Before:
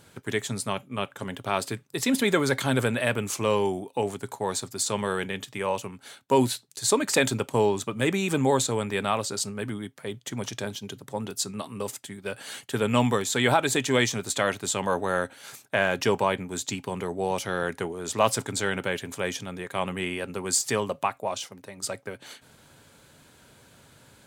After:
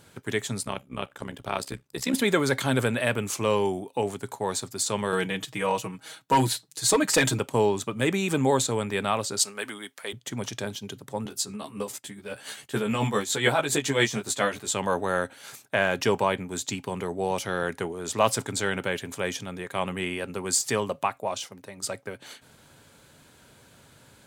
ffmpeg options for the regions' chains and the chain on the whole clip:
ffmpeg -i in.wav -filter_complex "[0:a]asettb=1/sr,asplit=3[link_01][link_02][link_03];[link_01]atrim=end=0.634[link_04];[link_02]atrim=start=0.63:end=2.14,asetpts=PTS-STARTPTS,afade=type=in:duration=0.004:curve=qsin,afade=type=out:start_time=1.506:duration=0.004:curve=qsin,equalizer=frequency=4900:width=7.3:gain=3.5,tremolo=f=66:d=0.788[link_05];[link_03]atrim=start=2.136[link_06];[link_04][link_05]acrossfade=duration=0.004:curve1=hsin:curve2=qsin[link_07];[link_07][link_06]acrossfade=duration=0.004:curve1=qsin:curve2=hsin,asettb=1/sr,asplit=3[link_08][link_09][link_10];[link_08]atrim=end=5.124[link_11];[link_09]atrim=start=5.12:end=7.39,asetpts=PTS-STARTPTS,afade=type=in:duration=0.004:curve=qsin,afade=type=out:start_time=2.266:duration=0.004:curve=qsin,aecho=1:1:6.3:0.94,atrim=end_sample=100107,asoftclip=type=hard:threshold=-14.5dB[link_12];[link_10]atrim=start=7.386[link_13];[link_11][link_12]acrossfade=duration=0.004:curve1=hsin:curve2=qsin[link_14];[link_14][link_13]acrossfade=duration=0.004:curve1=qsin:curve2=hsin,asettb=1/sr,asplit=3[link_15][link_16][link_17];[link_15]atrim=end=9.394[link_18];[link_16]atrim=start=9.39:end=10.13,asetpts=PTS-STARTPTS,afade=type=in:duration=0.004:curve=qsin,afade=type=out:start_time=0.736:duration=0.004:curve=qsin,highpass=270,tiltshelf=frequency=630:gain=-6.5[link_19];[link_17]atrim=start=10.126[link_20];[link_18][link_19]acrossfade=duration=0.004:curve1=hsin:curve2=qsin[link_21];[link_21][link_20]acrossfade=duration=0.004:curve1=qsin:curve2=hsin,asettb=1/sr,asplit=3[link_22][link_23][link_24];[link_22]atrim=end=11.244[link_25];[link_23]atrim=start=11.24:end=14.69,asetpts=PTS-STARTPTS,afade=type=in:duration=0.004:curve=qsin,afade=type=out:start_time=3.446:duration=0.004:curve=qsin,tremolo=f=7.2:d=0.61,asplit=2[link_26][link_27];[link_27]adelay=14,volume=-2dB[link_28];[link_26][link_28]amix=inputs=2:normalize=0,atrim=end_sample=152145[link_29];[link_24]atrim=start=14.686[link_30];[link_25][link_29]acrossfade=duration=0.004:curve1=hsin:curve2=qsin[link_31];[link_31][link_30]acrossfade=duration=0.004:curve1=qsin:curve2=hsin" out.wav

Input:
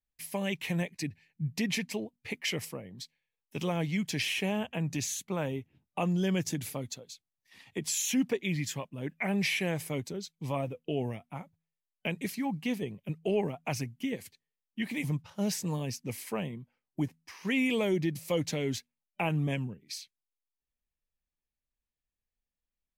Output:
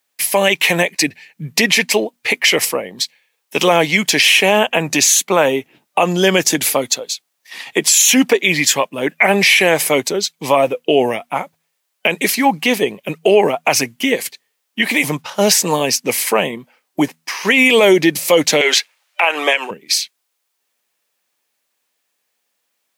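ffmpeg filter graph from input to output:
ffmpeg -i in.wav -filter_complex "[0:a]asettb=1/sr,asplit=3[link_01][link_02][link_03];[link_01]atrim=end=18.614[link_04];[link_02]atrim=start=18.61:end=19.71,asetpts=PTS-STARTPTS,afade=type=in:duration=0.004:curve=qsin,afade=type=out:start_time=1.096:duration=0.004:curve=qsin,highpass=frequency=400:width=0.5412,highpass=frequency=400:width=1.3066,equalizer=frequency=2100:width=0.3:gain=13,acompressor=threshold=-33dB:ratio=3:attack=3.2:release=140:knee=1:detection=peak[link_05];[link_03]atrim=start=19.706[link_06];[link_04][link_05]acrossfade=duration=0.004:curve1=hsin:curve2=qsin[link_07];[link_07][link_06]acrossfade=duration=0.004:curve1=qsin:curve2=hsin,highpass=450,alimiter=level_in=25.5dB:limit=-1dB:release=50:level=0:latency=1,volume=-1dB" out.wav

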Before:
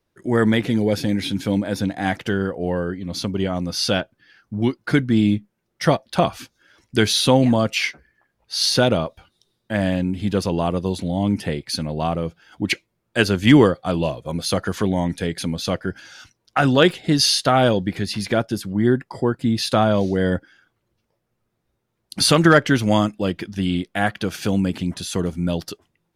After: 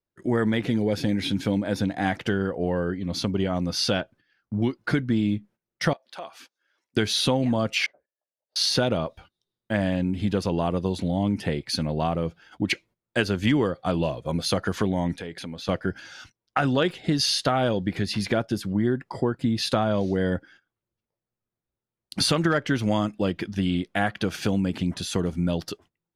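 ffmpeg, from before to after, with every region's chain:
ffmpeg -i in.wav -filter_complex "[0:a]asettb=1/sr,asplit=3[link_01][link_02][link_03];[link_01]atrim=end=5.934[link_04];[link_02]atrim=start=5.93:end=6.97,asetpts=PTS-STARTPTS,afade=type=in:duration=0.004:curve=qsin,afade=type=out:start_time=1.036:duration=0.004:curve=qsin,highpass=470,acompressor=threshold=-47dB:ratio=2:attack=3.2:release=140:knee=1:detection=peak[link_05];[link_03]atrim=start=6.966[link_06];[link_04][link_05]acrossfade=duration=0.004:curve1=hsin:curve2=qsin[link_07];[link_07][link_06]acrossfade=duration=0.004:curve1=qsin:curve2=hsin,asettb=1/sr,asplit=3[link_08][link_09][link_10];[link_08]atrim=end=7.864[link_11];[link_09]atrim=start=7.86:end=8.56,asetpts=PTS-STARTPTS,afade=type=in:duration=0.004:curve=qsin,afade=type=out:start_time=0.696:duration=0.004:curve=qsin,aeval=exprs='(tanh(28.2*val(0)+0.4)-tanh(0.4))/28.2':channel_layout=same,bandpass=frequency=600:width_type=q:width=5.7[link_12];[link_10]atrim=start=8.556[link_13];[link_11][link_12]acrossfade=duration=0.004:curve1=hsin:curve2=qsin[link_14];[link_14][link_13]acrossfade=duration=0.004:curve1=qsin:curve2=hsin,asettb=1/sr,asplit=3[link_15][link_16][link_17];[link_15]atrim=end=15.164[link_18];[link_16]atrim=start=15.16:end=15.69,asetpts=PTS-STARTPTS,afade=type=in:duration=0.004:curve=qsin,afade=type=out:start_time=0.526:duration=0.004:curve=qsin,bass=frequency=250:gain=-6,treble=frequency=4000:gain=-6,acompressor=threshold=-33dB:ratio=3:attack=3.2:release=140:knee=1:detection=peak[link_19];[link_17]atrim=start=15.686[link_20];[link_18][link_19]acrossfade=duration=0.004:curve1=hsin:curve2=qsin[link_21];[link_21][link_20]acrossfade=duration=0.004:curve1=qsin:curve2=hsin,highshelf=frequency=7300:gain=-7.5,acompressor=threshold=-20dB:ratio=4,agate=range=-16dB:threshold=-49dB:ratio=16:detection=peak" out.wav

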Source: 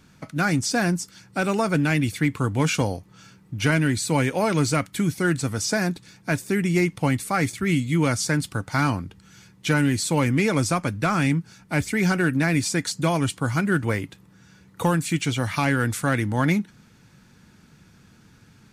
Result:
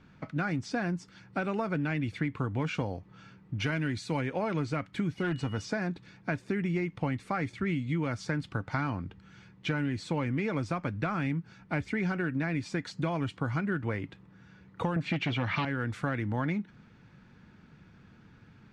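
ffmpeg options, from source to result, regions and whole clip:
ffmpeg -i in.wav -filter_complex "[0:a]asettb=1/sr,asplit=3[link_01][link_02][link_03];[link_01]atrim=end=3.594[link_04];[link_02]atrim=start=3.59:end=4.21,asetpts=PTS-STARTPTS,afade=type=in:duration=0.004:curve=qsin,afade=type=out:start_time=0.616:duration=0.004:curve=qsin,highshelf=frequency=3700:gain=8.5,bandreject=frequency=8000:width=14[link_05];[link_03]atrim=start=4.206[link_06];[link_04][link_05]acrossfade=duration=0.004:curve1=hsin:curve2=qsin[link_07];[link_07][link_06]acrossfade=duration=0.004:curve1=qsin:curve2=hsin,asettb=1/sr,asplit=3[link_08][link_09][link_10];[link_08]atrim=end=5.174[link_11];[link_09]atrim=start=5.17:end=5.62,asetpts=PTS-STARTPTS,afade=type=in:duration=0.004:curve=qsin,afade=type=out:start_time=0.446:duration=0.004:curve=qsin,aeval=exprs='val(0)+0.00794*sin(2*PI*2900*n/s)':channel_layout=same,asoftclip=type=hard:threshold=-18dB[link_12];[link_10]atrim=start=5.616[link_13];[link_11][link_12]acrossfade=duration=0.004:curve1=hsin:curve2=qsin[link_14];[link_14][link_13]acrossfade=duration=0.004:curve1=qsin:curve2=hsin,asettb=1/sr,asplit=3[link_15][link_16][link_17];[link_15]atrim=end=14.964[link_18];[link_16]atrim=start=14.96:end=15.65,asetpts=PTS-STARTPTS,afade=type=in:duration=0.004:curve=qsin,afade=type=out:start_time=0.686:duration=0.004:curve=qsin,aeval=exprs='0.299*sin(PI/2*2.24*val(0)/0.299)':channel_layout=same,highpass=110,lowpass=3800,adynamicequalizer=threshold=0.0282:dfrequency=2100:dqfactor=0.7:tfrequency=2100:tqfactor=0.7:attack=5:release=100:ratio=0.375:range=2:mode=boostabove:tftype=highshelf[link_19];[link_17]atrim=start=15.646[link_20];[link_18][link_19]acrossfade=duration=0.004:curve1=hsin:curve2=qsin[link_21];[link_21][link_20]acrossfade=duration=0.004:curve1=qsin:curve2=hsin,acompressor=threshold=-25dB:ratio=5,lowpass=2800,volume=-2.5dB" out.wav

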